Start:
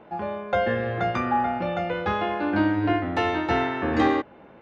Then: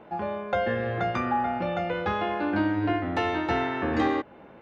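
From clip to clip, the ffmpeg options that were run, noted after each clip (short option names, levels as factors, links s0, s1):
-af "acompressor=threshold=0.0447:ratio=1.5"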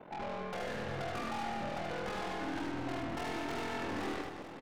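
-af "aeval=exprs='val(0)*sin(2*PI*21*n/s)':c=same,aeval=exprs='(tanh(79.4*val(0)+0.2)-tanh(0.2))/79.4':c=same,aecho=1:1:80|208|412.8|740.5|1265:0.631|0.398|0.251|0.158|0.1"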